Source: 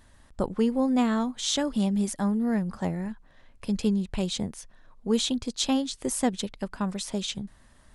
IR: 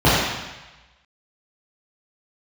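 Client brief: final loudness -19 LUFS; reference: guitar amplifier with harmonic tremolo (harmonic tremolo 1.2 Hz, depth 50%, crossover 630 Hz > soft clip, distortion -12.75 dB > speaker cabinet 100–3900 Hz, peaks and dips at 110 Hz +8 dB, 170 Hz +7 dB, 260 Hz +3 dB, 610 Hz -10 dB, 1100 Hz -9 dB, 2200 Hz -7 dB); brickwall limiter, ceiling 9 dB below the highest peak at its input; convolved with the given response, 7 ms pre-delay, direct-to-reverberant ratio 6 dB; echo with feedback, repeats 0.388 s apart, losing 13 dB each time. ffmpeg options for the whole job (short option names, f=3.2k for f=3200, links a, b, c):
-filter_complex "[0:a]alimiter=limit=-19.5dB:level=0:latency=1,aecho=1:1:388|776|1164:0.224|0.0493|0.0108,asplit=2[a][b];[1:a]atrim=start_sample=2205,adelay=7[c];[b][c]afir=irnorm=-1:irlink=0,volume=-32dB[d];[a][d]amix=inputs=2:normalize=0,acrossover=split=630[e][f];[e]aeval=exprs='val(0)*(1-0.5/2+0.5/2*cos(2*PI*1.2*n/s))':c=same[g];[f]aeval=exprs='val(0)*(1-0.5/2-0.5/2*cos(2*PI*1.2*n/s))':c=same[h];[g][h]amix=inputs=2:normalize=0,asoftclip=threshold=-26dB,highpass=100,equalizer=f=110:t=q:w=4:g=8,equalizer=f=170:t=q:w=4:g=7,equalizer=f=260:t=q:w=4:g=3,equalizer=f=610:t=q:w=4:g=-10,equalizer=f=1.1k:t=q:w=4:g=-9,equalizer=f=2.2k:t=q:w=4:g=-7,lowpass=f=3.9k:w=0.5412,lowpass=f=3.9k:w=1.3066,volume=12.5dB"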